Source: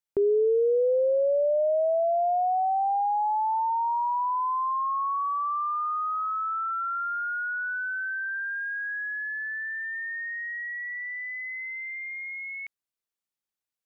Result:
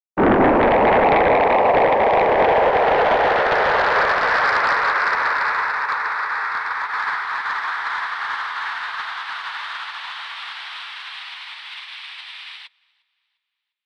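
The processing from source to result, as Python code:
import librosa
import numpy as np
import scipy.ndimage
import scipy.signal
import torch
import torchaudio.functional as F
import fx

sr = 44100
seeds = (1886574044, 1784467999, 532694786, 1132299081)

y = fx.spec_clip(x, sr, under_db=18, at=(5.61, 6.92), fade=0.02)
y = fx.noise_vocoder(y, sr, seeds[0], bands=6)
y = fx.echo_feedback(y, sr, ms=351, feedback_pct=43, wet_db=-12)
y = fx.fold_sine(y, sr, drive_db=10, ceiling_db=-10.0)
y = fx.upward_expand(y, sr, threshold_db=-34.0, expansion=2.5)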